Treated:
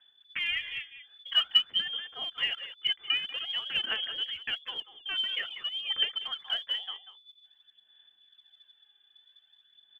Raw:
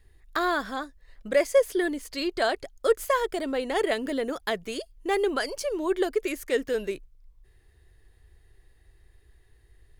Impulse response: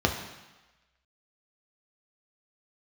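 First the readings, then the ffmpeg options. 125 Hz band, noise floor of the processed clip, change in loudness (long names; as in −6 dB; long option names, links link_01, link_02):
can't be measured, −67 dBFS, −2.5 dB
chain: -filter_complex "[0:a]asplit=2[link_01][link_02];[link_02]adelay=190,highpass=300,lowpass=3400,asoftclip=type=hard:threshold=-20dB,volume=-11dB[link_03];[link_01][link_03]amix=inputs=2:normalize=0,lowpass=frequency=3000:width_type=q:width=0.5098,lowpass=frequency=3000:width_type=q:width=0.6013,lowpass=frequency=3000:width_type=q:width=0.9,lowpass=frequency=3000:width_type=q:width=2.563,afreqshift=-3500,aphaser=in_gain=1:out_gain=1:delay=2.5:decay=0.48:speed=0.5:type=sinusoidal,volume=-7dB"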